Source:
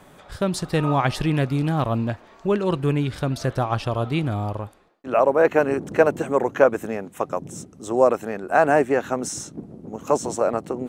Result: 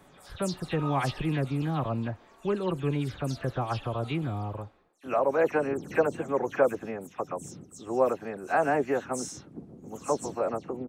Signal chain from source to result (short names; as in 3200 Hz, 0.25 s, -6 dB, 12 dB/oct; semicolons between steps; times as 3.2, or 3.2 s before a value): spectral delay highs early, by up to 0.114 s; gain -7 dB